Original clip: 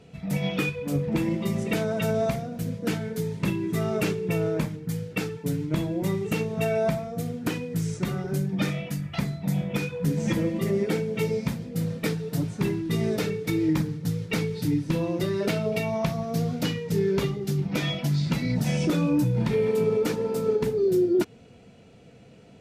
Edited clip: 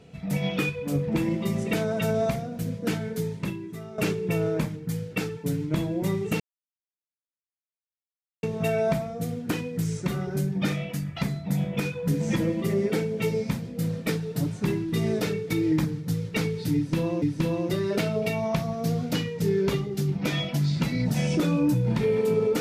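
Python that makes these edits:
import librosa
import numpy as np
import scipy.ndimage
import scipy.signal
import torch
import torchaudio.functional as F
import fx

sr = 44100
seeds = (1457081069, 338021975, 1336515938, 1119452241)

y = fx.edit(x, sr, fx.fade_out_to(start_s=3.25, length_s=0.73, curve='qua', floor_db=-14.0),
    fx.insert_silence(at_s=6.4, length_s=2.03),
    fx.repeat(start_s=14.72, length_s=0.47, count=2), tone=tone)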